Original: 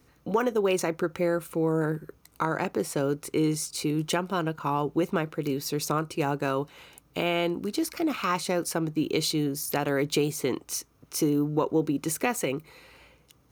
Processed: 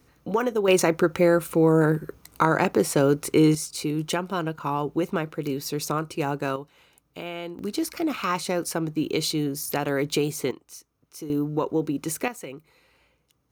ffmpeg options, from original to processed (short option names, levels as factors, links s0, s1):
-af "asetnsamples=n=441:p=0,asendcmd='0.68 volume volume 7dB;3.55 volume volume 0.5dB;6.56 volume volume -8dB;7.59 volume volume 1dB;10.51 volume volume -11.5dB;11.3 volume volume 0dB;12.28 volume volume -9dB',volume=1.12"